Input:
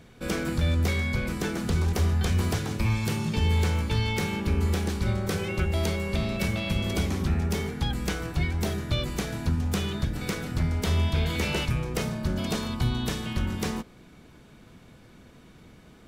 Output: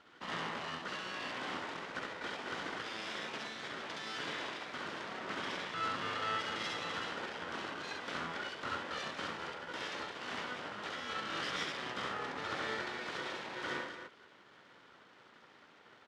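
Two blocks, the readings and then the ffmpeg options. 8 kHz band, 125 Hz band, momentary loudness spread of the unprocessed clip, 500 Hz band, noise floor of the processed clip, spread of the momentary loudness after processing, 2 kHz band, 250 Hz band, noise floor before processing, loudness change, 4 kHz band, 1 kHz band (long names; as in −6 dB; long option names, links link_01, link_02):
−14.5 dB, −30.0 dB, 5 LU, −11.0 dB, −61 dBFS, 6 LU, −4.5 dB, −18.5 dB, −52 dBFS, −12.0 dB, −6.5 dB, −2.5 dB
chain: -filter_complex "[0:a]alimiter=limit=-22.5dB:level=0:latency=1:release=21,asplit=3[link_01][link_02][link_03];[link_01]bandpass=frequency=730:width_type=q:width=8,volume=0dB[link_04];[link_02]bandpass=frequency=1090:width_type=q:width=8,volume=-6dB[link_05];[link_03]bandpass=frequency=2440:width_type=q:width=8,volume=-9dB[link_06];[link_04][link_05][link_06]amix=inputs=3:normalize=0,aecho=1:1:67.06|256.6:0.891|0.447,aeval=exprs='abs(val(0))':channel_layout=same,highpass=190,lowpass=6600,volume=10.5dB"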